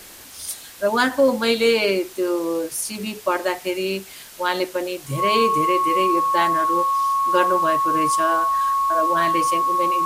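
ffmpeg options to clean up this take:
-af "bandreject=f=1100:w=30,afftdn=nr=27:nf=-40"

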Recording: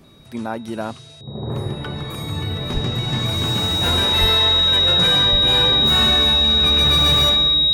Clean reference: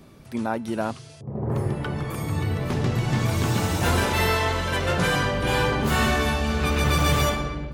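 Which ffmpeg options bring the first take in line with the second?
-filter_complex "[0:a]bandreject=f=3800:w=30,asplit=3[s0][s1][s2];[s0]afade=t=out:st=2.73:d=0.02[s3];[s1]highpass=f=140:w=0.5412,highpass=f=140:w=1.3066,afade=t=in:st=2.73:d=0.02,afade=t=out:st=2.85:d=0.02[s4];[s2]afade=t=in:st=2.85:d=0.02[s5];[s3][s4][s5]amix=inputs=3:normalize=0,asplit=3[s6][s7][s8];[s6]afade=t=out:st=4.2:d=0.02[s9];[s7]highpass=f=140:w=0.5412,highpass=f=140:w=1.3066,afade=t=in:st=4.2:d=0.02,afade=t=out:st=4.32:d=0.02[s10];[s8]afade=t=in:st=4.32:d=0.02[s11];[s9][s10][s11]amix=inputs=3:normalize=0,asplit=3[s12][s13][s14];[s12]afade=t=out:st=5.31:d=0.02[s15];[s13]highpass=f=140:w=0.5412,highpass=f=140:w=1.3066,afade=t=in:st=5.31:d=0.02,afade=t=out:st=5.43:d=0.02[s16];[s14]afade=t=in:st=5.43:d=0.02[s17];[s15][s16][s17]amix=inputs=3:normalize=0"

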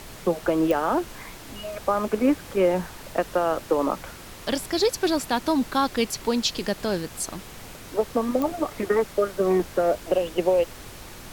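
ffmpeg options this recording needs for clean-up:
-af "adeclick=t=4,afftdn=nr=27:nf=-42"

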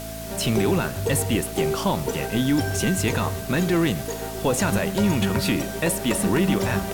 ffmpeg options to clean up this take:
-af "bandreject=f=54.9:t=h:w=4,bandreject=f=109.8:t=h:w=4,bandreject=f=164.7:t=h:w=4,bandreject=f=219.6:t=h:w=4,bandreject=f=274.5:t=h:w=4,bandreject=f=660:w=30,afwtdn=0.011"

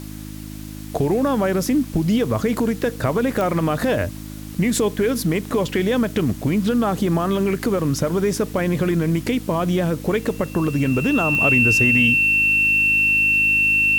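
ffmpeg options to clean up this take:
-af "adeclick=t=4,bandreject=f=52.1:t=h:w=4,bandreject=f=104.2:t=h:w=4,bandreject=f=156.3:t=h:w=4,bandreject=f=208.4:t=h:w=4,bandreject=f=260.5:t=h:w=4,bandreject=f=312.6:t=h:w=4,bandreject=f=2700:w=30,afwtdn=0.0071"

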